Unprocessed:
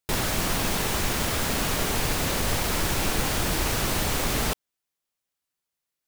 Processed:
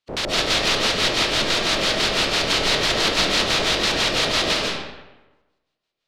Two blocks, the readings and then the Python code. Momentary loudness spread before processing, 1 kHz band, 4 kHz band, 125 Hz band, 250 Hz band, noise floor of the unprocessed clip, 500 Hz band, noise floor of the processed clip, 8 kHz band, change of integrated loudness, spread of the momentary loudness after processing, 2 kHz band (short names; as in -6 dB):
1 LU, +4.5 dB, +12.0 dB, -3.5 dB, +2.0 dB, -85 dBFS, +7.0 dB, -80 dBFS, +1.0 dB, +6.5 dB, 4 LU, +8.0 dB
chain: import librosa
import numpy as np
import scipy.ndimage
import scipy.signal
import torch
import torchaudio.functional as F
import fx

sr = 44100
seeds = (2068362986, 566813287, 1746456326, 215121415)

y = fx.spec_flatten(x, sr, power=0.11)
y = fx.filter_lfo_lowpass(y, sr, shape='square', hz=6.0, low_hz=520.0, high_hz=4000.0, q=1.8)
y = fx.rev_freeverb(y, sr, rt60_s=1.1, hf_ratio=0.7, predelay_ms=105, drr_db=-4.0)
y = y * librosa.db_to_amplitude(4.5)